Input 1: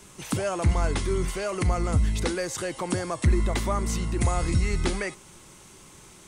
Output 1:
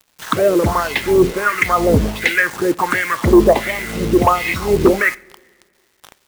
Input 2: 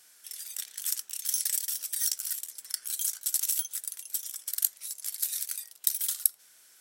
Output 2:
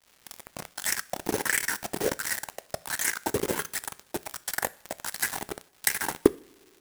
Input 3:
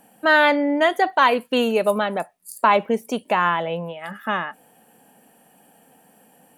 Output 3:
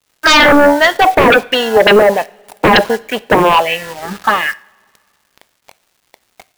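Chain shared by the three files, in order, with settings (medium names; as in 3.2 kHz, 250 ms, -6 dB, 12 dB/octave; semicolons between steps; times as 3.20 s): in parallel at -11 dB: sample-and-hold 36×; on the sum: touch-sensitive phaser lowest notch 330 Hz, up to 2.4 kHz, full sweep at -16 dBFS; wah-wah 1.4 Hz 410–2200 Hz, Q 2.8; sine folder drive 15 dB, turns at -11 dBFS; word length cut 6-bit, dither none; crossover distortion -43 dBFS; crackle 510 per s -53 dBFS; two-slope reverb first 0.43 s, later 2 s, from -19 dB, DRR 16.5 dB; trim +7.5 dB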